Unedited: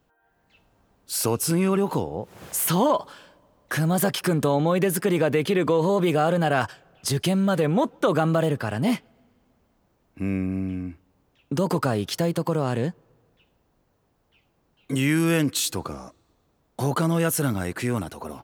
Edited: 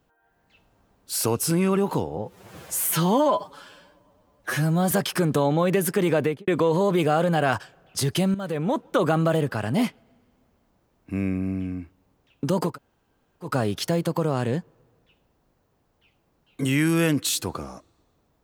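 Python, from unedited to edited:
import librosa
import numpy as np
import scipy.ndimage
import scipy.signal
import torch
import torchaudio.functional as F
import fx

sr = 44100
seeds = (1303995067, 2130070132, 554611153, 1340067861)

y = fx.studio_fade_out(x, sr, start_s=5.29, length_s=0.27)
y = fx.edit(y, sr, fx.stretch_span(start_s=2.17, length_s=1.83, factor=1.5),
    fx.fade_in_from(start_s=7.43, length_s=0.81, curve='qsin', floor_db=-13.0),
    fx.insert_room_tone(at_s=11.79, length_s=0.78, crossfade_s=0.16), tone=tone)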